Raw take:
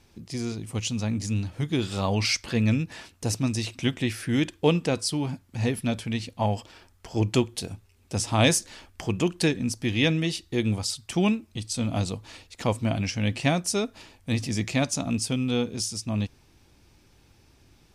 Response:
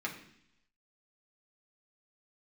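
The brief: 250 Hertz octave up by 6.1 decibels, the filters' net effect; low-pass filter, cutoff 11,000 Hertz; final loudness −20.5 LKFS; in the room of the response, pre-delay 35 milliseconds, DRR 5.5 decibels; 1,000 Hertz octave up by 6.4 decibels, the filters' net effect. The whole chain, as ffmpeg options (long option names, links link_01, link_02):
-filter_complex "[0:a]lowpass=11000,equalizer=frequency=250:width_type=o:gain=7,equalizer=frequency=1000:width_type=o:gain=8,asplit=2[link_01][link_02];[1:a]atrim=start_sample=2205,adelay=35[link_03];[link_02][link_03]afir=irnorm=-1:irlink=0,volume=-9dB[link_04];[link_01][link_04]amix=inputs=2:normalize=0,volume=1.5dB"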